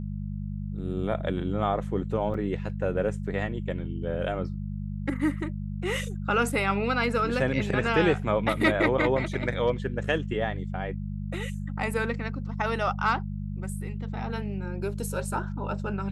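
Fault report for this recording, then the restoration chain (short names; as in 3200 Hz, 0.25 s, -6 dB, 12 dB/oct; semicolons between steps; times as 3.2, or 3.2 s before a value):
hum 50 Hz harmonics 4 -33 dBFS
2.34 gap 4.2 ms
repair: de-hum 50 Hz, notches 4; interpolate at 2.34, 4.2 ms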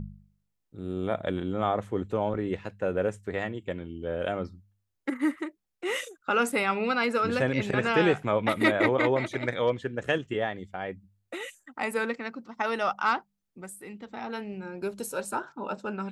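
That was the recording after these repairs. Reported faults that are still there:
none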